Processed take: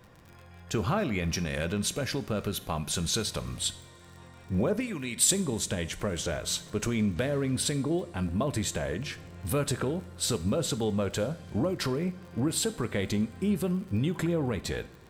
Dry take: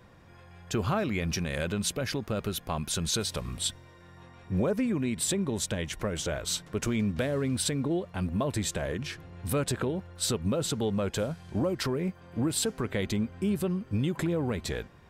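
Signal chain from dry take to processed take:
0:04.80–0:05.31: tilt shelving filter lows −7.5 dB, about 1,300 Hz
surface crackle 38 per second −42 dBFS
coupled-rooms reverb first 0.53 s, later 3.5 s, from −18 dB, DRR 12 dB

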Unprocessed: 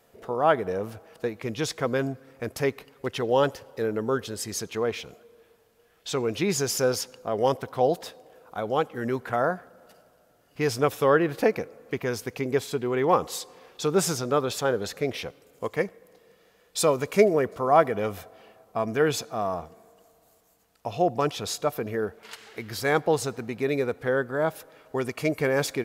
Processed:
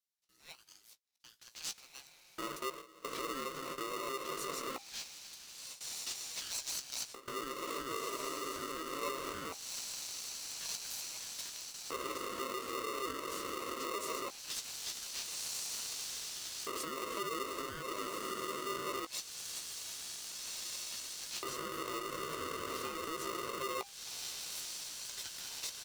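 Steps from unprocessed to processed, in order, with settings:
mains-hum notches 60/120/180/240/300/360 Hz
feedback delay with all-pass diffusion 1,591 ms, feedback 75%, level −4 dB
noise gate with hold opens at −21 dBFS
auto-filter high-pass square 0.21 Hz 320–4,600 Hz
downward compressor 2.5 to 1, threshold −29 dBFS, peak gain reduction 14 dB
brickwall limiter −23 dBFS, peak gain reduction 8 dB
guitar amp tone stack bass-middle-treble 10-0-1
double-tracking delay 17 ms −9 dB
ring modulator with a square carrier 800 Hz
level +14.5 dB

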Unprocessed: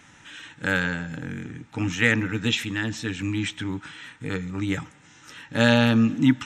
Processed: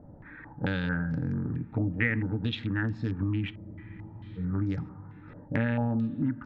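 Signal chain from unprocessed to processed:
adaptive Wiener filter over 15 samples
spectral tilt −3.5 dB per octave
downward compressor 10 to 1, threshold −23 dBFS, peak gain reduction 17.5 dB
on a send at −18 dB: convolution reverb RT60 2.4 s, pre-delay 5 ms
on the sum: frozen spectrum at 0:03.55, 0.83 s
low-pass on a step sequencer 4.5 Hz 610–5,200 Hz
level −3 dB

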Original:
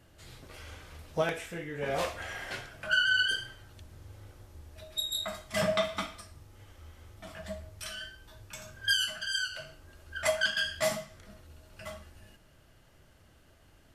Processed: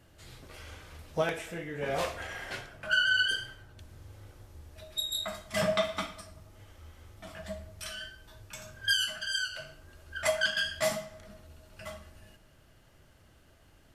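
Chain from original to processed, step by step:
feedback echo with a low-pass in the loop 96 ms, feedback 70%, low-pass 1,800 Hz, level −18.5 dB
0:02.27–0:03.79: one half of a high-frequency compander decoder only

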